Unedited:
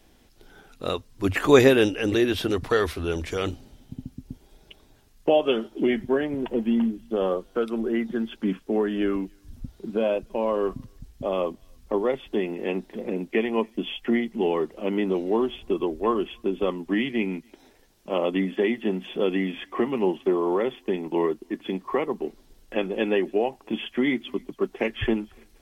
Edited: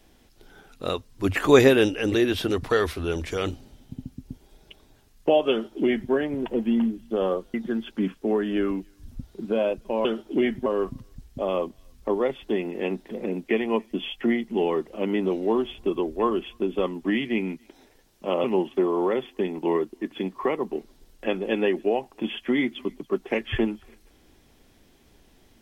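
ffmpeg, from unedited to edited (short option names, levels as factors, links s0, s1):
-filter_complex "[0:a]asplit=5[s0][s1][s2][s3][s4];[s0]atrim=end=7.542[s5];[s1]atrim=start=7.988:end=10.502[s6];[s2]atrim=start=5.508:end=6.122[s7];[s3]atrim=start=10.498:end=18.282[s8];[s4]atrim=start=19.928[s9];[s5][s6]acrossfade=d=0.004:c1=hsin:c2=hsin[s10];[s10][s7]acrossfade=d=0.004:c1=hsin:c2=hsin[s11];[s11][s8]acrossfade=d=0.004:c1=hsin:c2=hsin[s12];[s12][s9]acrossfade=d=0.004:c1=hsin:c2=hsin"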